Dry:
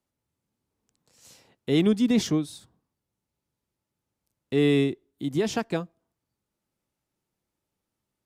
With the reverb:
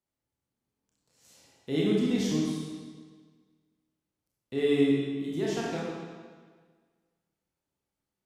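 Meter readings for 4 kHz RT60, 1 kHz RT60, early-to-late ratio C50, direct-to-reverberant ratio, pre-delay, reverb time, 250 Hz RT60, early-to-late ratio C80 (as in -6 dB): 1.4 s, 1.6 s, -1.0 dB, -5.0 dB, 25 ms, 1.6 s, 1.6 s, 1.0 dB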